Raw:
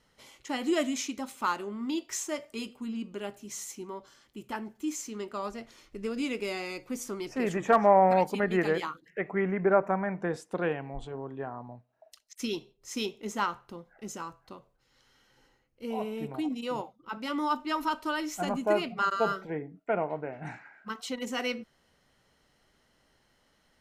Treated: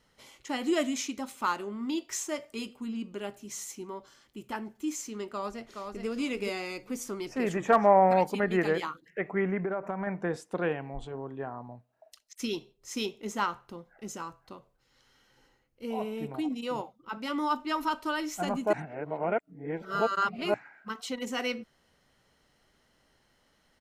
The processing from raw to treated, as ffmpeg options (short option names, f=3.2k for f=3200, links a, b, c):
-filter_complex "[0:a]asplit=2[a][b];[b]afade=t=in:st=5.27:d=0.01,afade=t=out:st=6.07:d=0.01,aecho=0:1:420|840|1260:0.562341|0.0843512|0.0126527[c];[a][c]amix=inputs=2:normalize=0,asettb=1/sr,asplit=3[d][e][f];[d]atrim=end=9.614[g];[e]atrim=start=9.61:end=10.07,asetpts=PTS-STARTPTS,afade=t=in:d=0.004:c=qsin,afade=t=out:st=0.456:d=0.004:c=qsin,acompressor=threshold=-28dB:ratio=6:attack=3.2:release=140:knee=1:detection=peak[h];[f]atrim=start=10.066[i];[g][h]acrossfade=d=0.004:c1=hsin:c2=qsin[j];[j][i]acrossfade=d=0.004:c1=qsin:c2=hsin,asplit=3[k][l][m];[k]atrim=end=18.732[n];[l]atrim=start=18.728:end=20.542,asetpts=PTS-STARTPTS,areverse[o];[m]atrim=start=20.538[p];[n][o]acrossfade=d=0.004:c1=hsin:c2=hsin[q];[q][p]acrossfade=d=0.004:c1=hsin:c2=hsin"